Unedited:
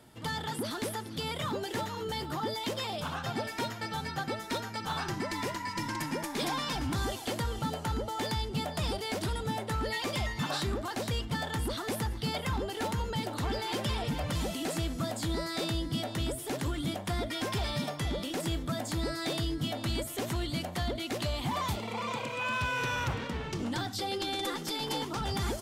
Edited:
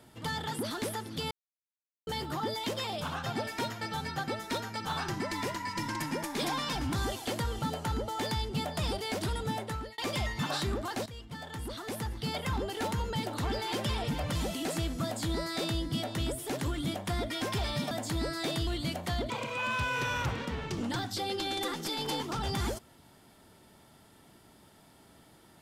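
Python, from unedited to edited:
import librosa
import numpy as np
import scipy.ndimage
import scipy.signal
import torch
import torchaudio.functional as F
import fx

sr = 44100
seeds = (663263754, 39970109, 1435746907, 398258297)

y = fx.edit(x, sr, fx.silence(start_s=1.31, length_s=0.76),
    fx.fade_out_span(start_s=9.44, length_s=0.54, curve='qsin'),
    fx.fade_in_from(start_s=11.06, length_s=1.52, floor_db=-15.0),
    fx.cut(start_s=17.91, length_s=0.82),
    fx.cut(start_s=19.49, length_s=0.87),
    fx.cut(start_s=20.99, length_s=1.13), tone=tone)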